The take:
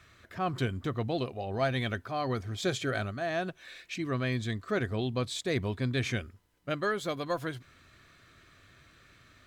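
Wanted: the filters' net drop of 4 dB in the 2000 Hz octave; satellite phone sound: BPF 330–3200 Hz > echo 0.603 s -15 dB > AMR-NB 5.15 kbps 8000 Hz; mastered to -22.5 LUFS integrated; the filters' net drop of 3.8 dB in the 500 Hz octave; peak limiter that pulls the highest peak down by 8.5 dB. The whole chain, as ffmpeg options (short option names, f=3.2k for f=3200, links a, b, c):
-af "equalizer=f=500:t=o:g=-3.5,equalizer=f=2k:t=o:g=-4.5,alimiter=level_in=2.5dB:limit=-24dB:level=0:latency=1,volume=-2.5dB,highpass=330,lowpass=3.2k,aecho=1:1:603:0.178,volume=19.5dB" -ar 8000 -c:a libopencore_amrnb -b:a 5150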